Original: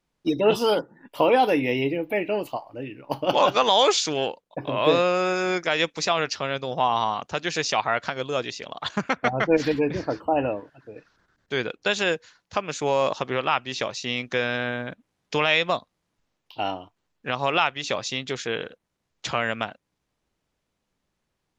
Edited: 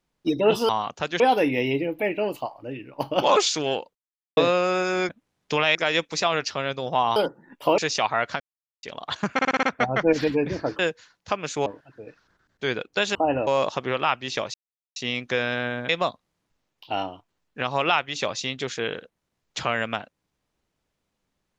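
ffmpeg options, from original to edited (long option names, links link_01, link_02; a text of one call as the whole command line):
ffmpeg -i in.wav -filter_complex "[0:a]asplit=23[link_01][link_02][link_03][link_04][link_05][link_06][link_07][link_08][link_09][link_10][link_11][link_12][link_13][link_14][link_15][link_16][link_17][link_18][link_19][link_20][link_21][link_22][link_23];[link_01]atrim=end=0.692[link_24];[link_02]atrim=start=7.008:end=7.522[link_25];[link_03]atrim=start=1.308:end=3.472[link_26];[link_04]atrim=start=3.868:end=4.46,asetpts=PTS-STARTPTS,afade=type=out:start_time=0.588:duration=0.004:curve=hsin[link_27];[link_05]atrim=start=4.46:end=4.88,asetpts=PTS-STARTPTS,volume=0[link_28];[link_06]atrim=start=4.88:end=5.602,asetpts=PTS-STARTPTS,afade=type=in:duration=0.004:curve=hsin[link_29];[link_07]atrim=start=14.908:end=15.572[link_30];[link_08]atrim=start=5.598:end=7.012[link_31];[link_09]atrim=start=0.688:end=1.312[link_32];[link_10]atrim=start=7.518:end=8.14,asetpts=PTS-STARTPTS,afade=type=out:start_time=0.618:duration=0.004:curve=hsin[link_33];[link_11]atrim=start=8.14:end=8.57,asetpts=PTS-STARTPTS,volume=0[link_34];[link_12]atrim=start=8.57:end=9.132,asetpts=PTS-STARTPTS,afade=type=in:duration=0.004:curve=hsin[link_35];[link_13]atrim=start=9.068:end=9.132[link_36];[link_14]atrim=start=9.068:end=9.132[link_37];[link_15]atrim=start=9.068:end=9.132[link_38];[link_16]atrim=start=9.068:end=9.132[link_39];[link_17]atrim=start=9.068:end=10.232[link_40];[link_18]atrim=start=12.038:end=12.912[link_41];[link_19]atrim=start=10.548:end=12.042[link_42];[link_20]atrim=start=10.228:end=10.552[link_43];[link_21]atrim=start=12.908:end=13.98,asetpts=PTS-STARTPTS,afade=type=out:start_time=1.068:duration=0.004:curve=hsin,apad=pad_dur=0.42[link_44];[link_22]atrim=start=13.98:end=14.912,asetpts=PTS-STARTPTS,afade=type=in:duration=0.004:curve=hsin[link_45];[link_23]atrim=start=15.568[link_46];[link_24][link_25]acrossfade=duration=0.004:curve1=hsin:curve2=hsin[link_47];[link_47][link_26]acrossfade=duration=0.004:curve1=hsin:curve2=hsin[link_48];[link_27][link_28][link_29]concat=n=3:v=0:a=1[link_49];[link_48][link_49]acrossfade=duration=0.004:curve1=hsin:curve2=hsin[link_50];[link_50][link_30]acrossfade=duration=0.004:curve1=hsin:curve2=hsin[link_51];[link_51][link_31]acrossfade=duration=0.004:curve1=hsin:curve2=hsin[link_52];[link_52][link_32]acrossfade=duration=0.004:curve1=hsin:curve2=hsin[link_53];[link_33][link_34][link_35]concat=n=3:v=0:a=1[link_54];[link_53][link_54]acrossfade=duration=0.004:curve1=hsin:curve2=hsin[link_55];[link_55][link_36]acrossfade=duration=0.004:curve1=hsin:curve2=hsin[link_56];[link_56][link_37]acrossfade=duration=0.004:curve1=hsin:curve2=hsin[link_57];[link_57][link_38]acrossfade=duration=0.004:curve1=hsin:curve2=hsin[link_58];[link_58][link_39]acrossfade=duration=0.004:curve1=hsin:curve2=hsin[link_59];[link_59][link_40]acrossfade=duration=0.004:curve1=hsin:curve2=hsin[link_60];[link_60][link_41]acrossfade=duration=0.004:curve1=hsin:curve2=hsin[link_61];[link_61][link_42]acrossfade=duration=0.004:curve1=hsin:curve2=hsin[link_62];[link_62][link_43]acrossfade=duration=0.004:curve1=hsin:curve2=hsin[link_63];[link_44][link_45]concat=n=2:v=0:a=1[link_64];[link_63][link_64]acrossfade=duration=0.004:curve1=hsin:curve2=hsin[link_65];[link_65][link_46]acrossfade=duration=0.004:curve1=hsin:curve2=hsin" out.wav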